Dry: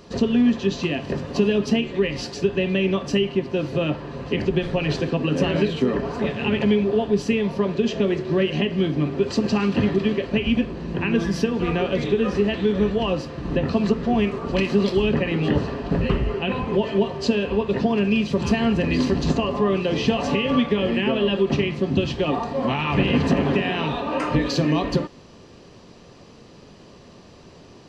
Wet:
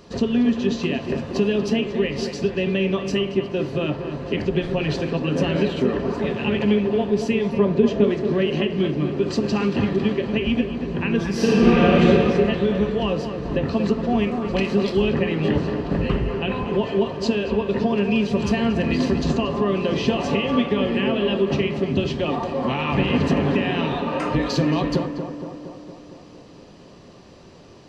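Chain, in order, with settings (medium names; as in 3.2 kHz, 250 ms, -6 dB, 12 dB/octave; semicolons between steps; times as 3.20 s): 7.53–8.04 s: tilt shelf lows +5.5 dB, about 1.4 kHz; tape echo 232 ms, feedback 73%, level -6.5 dB, low-pass 1.6 kHz; 11.34–12.04 s: reverb throw, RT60 2.6 s, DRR -7.5 dB; trim -1 dB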